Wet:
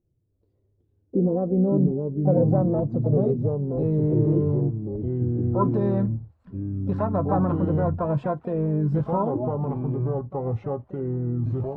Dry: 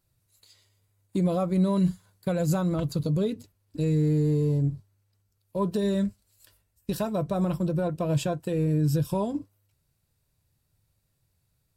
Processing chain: low-pass sweep 370 Hz -> 1100 Hz, 0.91–4.8; harmoniser +5 st -14 dB; echoes that change speed 0.261 s, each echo -4 st, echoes 2

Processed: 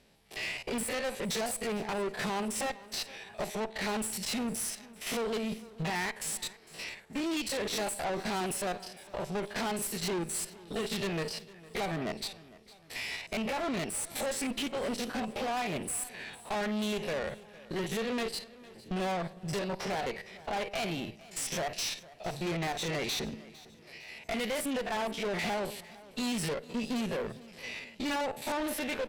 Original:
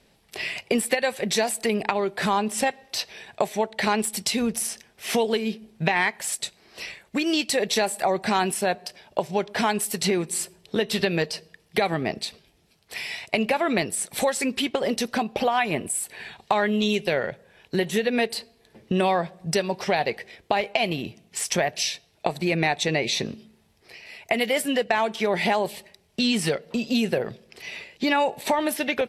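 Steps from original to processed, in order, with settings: stepped spectrum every 50 ms; tube stage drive 30 dB, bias 0.55; feedback echo 0.456 s, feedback 47%, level -20 dB

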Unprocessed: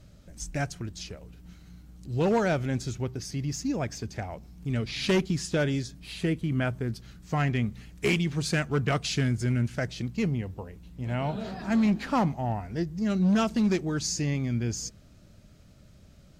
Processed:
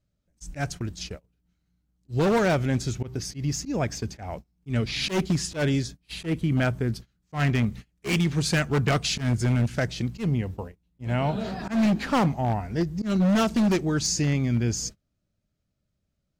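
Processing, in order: wavefolder -21 dBFS; gate -40 dBFS, range -28 dB; auto swell 0.11 s; gain +4.5 dB

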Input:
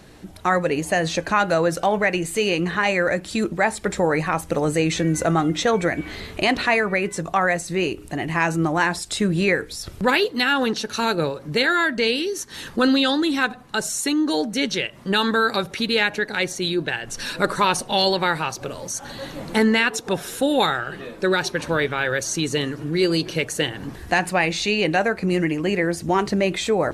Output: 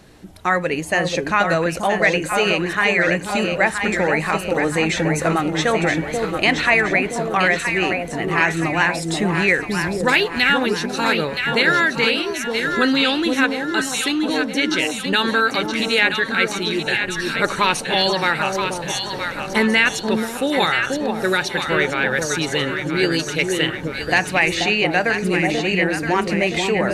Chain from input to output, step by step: dynamic EQ 2200 Hz, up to +7 dB, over -35 dBFS, Q 1.2; echo with dull and thin repeats by turns 0.486 s, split 860 Hz, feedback 69%, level -3 dB; gain -1 dB

